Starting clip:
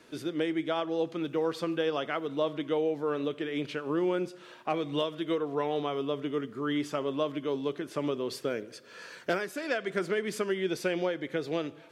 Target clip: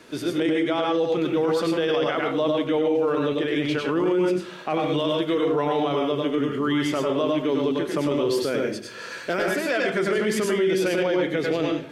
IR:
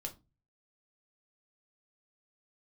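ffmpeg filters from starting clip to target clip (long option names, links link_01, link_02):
-filter_complex "[0:a]asplit=2[link_01][link_02];[1:a]atrim=start_sample=2205,asetrate=28224,aresample=44100,adelay=97[link_03];[link_02][link_03]afir=irnorm=-1:irlink=0,volume=-2dB[link_04];[link_01][link_04]amix=inputs=2:normalize=0,alimiter=limit=-23dB:level=0:latency=1:release=11,volume=8dB"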